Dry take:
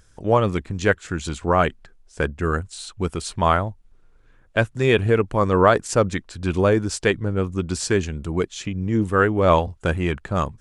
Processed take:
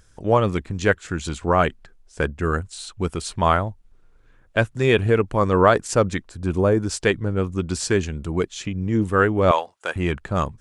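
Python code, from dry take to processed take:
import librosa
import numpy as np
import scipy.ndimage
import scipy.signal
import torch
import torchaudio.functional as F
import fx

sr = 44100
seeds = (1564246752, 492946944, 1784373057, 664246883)

y = fx.peak_eq(x, sr, hz=3200.0, db=-10.0, octaves=2.0, at=(6.29, 6.83))
y = fx.highpass(y, sr, hz=680.0, slope=12, at=(9.51, 9.96))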